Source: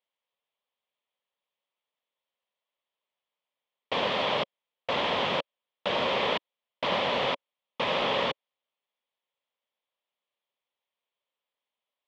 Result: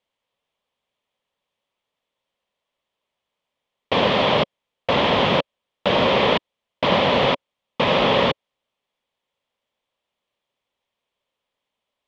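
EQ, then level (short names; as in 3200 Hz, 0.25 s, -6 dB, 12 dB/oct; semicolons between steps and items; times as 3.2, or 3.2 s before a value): air absorption 88 m; low shelf 340 Hz +9.5 dB; high shelf 6500 Hz +9.5 dB; +7.5 dB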